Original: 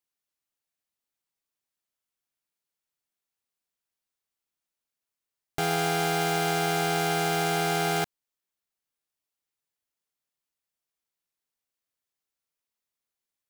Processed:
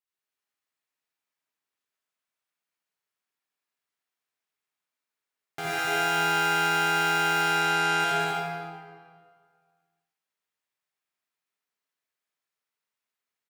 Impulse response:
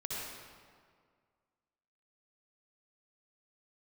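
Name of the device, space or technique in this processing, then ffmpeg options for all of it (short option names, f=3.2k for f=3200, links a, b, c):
stadium PA: -filter_complex "[0:a]asettb=1/sr,asplit=3[a][b][c];[a]atrim=end=7.424[d];[b]atrim=start=7.42:end=8,asetpts=PTS-STARTPTS,afade=t=in:d=0.004:c=qsin,afade=t=out:st=0.576:d=0.004:c=qsin,lowpass=10k[e];[c]atrim=start=7.996[f];[d][e]acrossfade=d=0.004:c1=hsin:c2=qsin[g];[g][f]acrossfade=d=0.004:c1=qsin:c2=hsin,highpass=120,equalizer=f=1.6k:t=o:w=2.4:g=7.5,aecho=1:1:198.3|288.6:0.708|0.316[h];[1:a]atrim=start_sample=2205[i];[h][i]afir=irnorm=-1:irlink=0,volume=-6.5dB"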